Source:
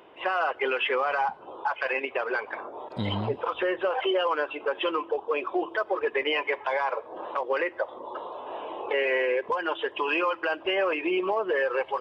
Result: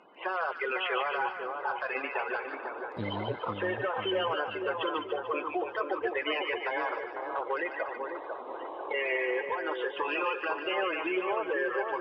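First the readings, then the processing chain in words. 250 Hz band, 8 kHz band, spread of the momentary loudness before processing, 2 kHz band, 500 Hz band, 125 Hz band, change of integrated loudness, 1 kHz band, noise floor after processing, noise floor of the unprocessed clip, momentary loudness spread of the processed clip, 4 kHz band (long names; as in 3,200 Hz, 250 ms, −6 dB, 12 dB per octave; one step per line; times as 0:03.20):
−4.0 dB, can't be measured, 9 LU, −3.5 dB, −5.0 dB, −5.5 dB, −4.0 dB, −3.5 dB, −42 dBFS, −48 dBFS, 6 LU, −3.5 dB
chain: spectral magnitudes quantised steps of 30 dB
high-frequency loss of the air 86 metres
echo with a time of its own for lows and highs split 1,500 Hz, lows 497 ms, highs 147 ms, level −5 dB
level −4.5 dB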